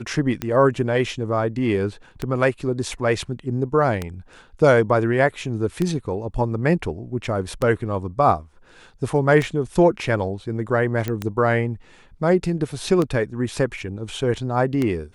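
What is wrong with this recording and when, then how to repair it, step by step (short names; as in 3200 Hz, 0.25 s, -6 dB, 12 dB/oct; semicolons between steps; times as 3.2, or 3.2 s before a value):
tick 33 1/3 rpm -10 dBFS
11.08 pop -12 dBFS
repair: de-click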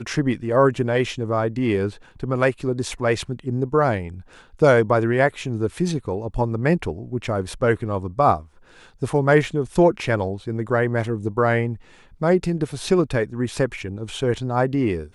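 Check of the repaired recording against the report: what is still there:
none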